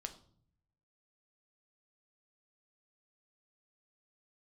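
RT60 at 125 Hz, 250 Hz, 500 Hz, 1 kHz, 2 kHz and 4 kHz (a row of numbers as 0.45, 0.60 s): 1.2, 0.90, 0.60, 0.50, 0.40, 0.45 s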